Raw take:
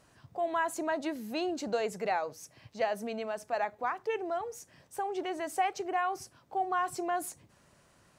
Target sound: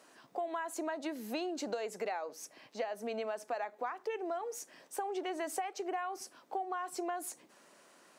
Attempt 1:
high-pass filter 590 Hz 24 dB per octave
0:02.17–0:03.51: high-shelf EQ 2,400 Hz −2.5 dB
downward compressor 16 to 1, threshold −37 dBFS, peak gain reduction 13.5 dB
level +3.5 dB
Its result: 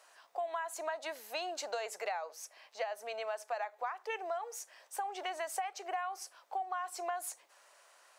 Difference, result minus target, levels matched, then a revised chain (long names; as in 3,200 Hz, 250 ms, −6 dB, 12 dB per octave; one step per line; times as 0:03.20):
250 Hz band −15.0 dB
high-pass filter 250 Hz 24 dB per octave
0:02.17–0:03.51: high-shelf EQ 2,400 Hz −2.5 dB
downward compressor 16 to 1, threshold −37 dBFS, peak gain reduction 14.5 dB
level +3.5 dB